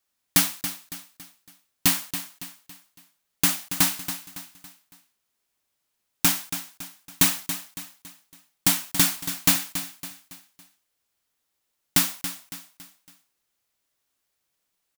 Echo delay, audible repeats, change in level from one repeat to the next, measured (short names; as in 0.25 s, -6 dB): 0.279 s, 4, -7.5 dB